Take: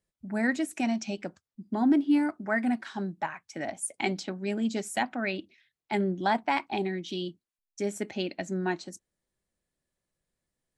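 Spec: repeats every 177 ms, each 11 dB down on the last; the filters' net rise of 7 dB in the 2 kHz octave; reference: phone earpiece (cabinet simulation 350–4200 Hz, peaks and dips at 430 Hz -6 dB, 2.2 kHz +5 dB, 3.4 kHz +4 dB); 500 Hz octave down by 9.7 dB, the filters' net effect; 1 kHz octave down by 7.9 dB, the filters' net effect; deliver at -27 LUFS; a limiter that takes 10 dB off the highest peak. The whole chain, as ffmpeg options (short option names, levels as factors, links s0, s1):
-af "equalizer=f=500:t=o:g=-6.5,equalizer=f=1000:t=o:g=-9,equalizer=f=2000:t=o:g=7.5,alimiter=limit=0.0891:level=0:latency=1,highpass=350,equalizer=f=430:t=q:w=4:g=-6,equalizer=f=2200:t=q:w=4:g=5,equalizer=f=3400:t=q:w=4:g=4,lowpass=f=4200:w=0.5412,lowpass=f=4200:w=1.3066,aecho=1:1:177|354|531:0.282|0.0789|0.0221,volume=2.11"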